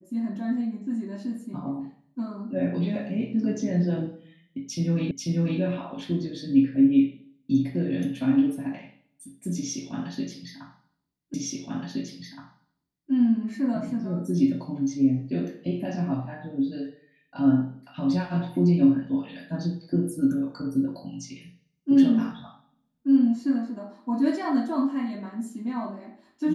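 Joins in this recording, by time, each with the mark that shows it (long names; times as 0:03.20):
0:05.11: the same again, the last 0.49 s
0:11.34: the same again, the last 1.77 s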